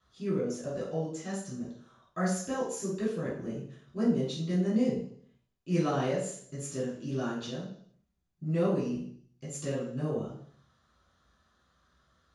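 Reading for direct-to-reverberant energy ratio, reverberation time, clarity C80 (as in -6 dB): -11.0 dB, 0.60 s, 7.0 dB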